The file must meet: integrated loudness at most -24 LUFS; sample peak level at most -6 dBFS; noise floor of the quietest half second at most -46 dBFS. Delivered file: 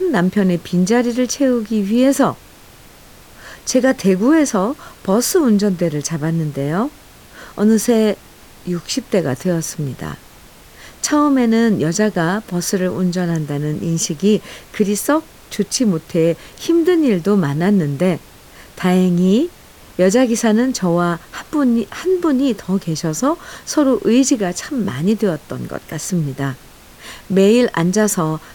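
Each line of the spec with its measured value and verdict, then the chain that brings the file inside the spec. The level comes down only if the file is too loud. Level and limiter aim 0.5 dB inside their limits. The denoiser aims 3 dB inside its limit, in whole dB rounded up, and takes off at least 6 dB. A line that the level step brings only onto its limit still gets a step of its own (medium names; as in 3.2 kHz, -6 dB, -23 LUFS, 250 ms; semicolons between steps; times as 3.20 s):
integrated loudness -17.0 LUFS: fail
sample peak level -2.5 dBFS: fail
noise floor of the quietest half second -42 dBFS: fail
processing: trim -7.5 dB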